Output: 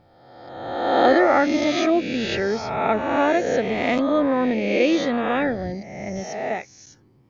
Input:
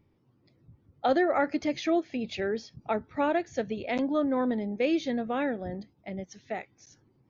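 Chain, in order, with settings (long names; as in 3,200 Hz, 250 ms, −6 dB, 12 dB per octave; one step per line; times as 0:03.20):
peak hold with a rise ahead of every peak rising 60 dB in 1.32 s
0:05.72–0:06.16: parametric band 3,400 Hz −14.5 dB 0.48 octaves
level +5.5 dB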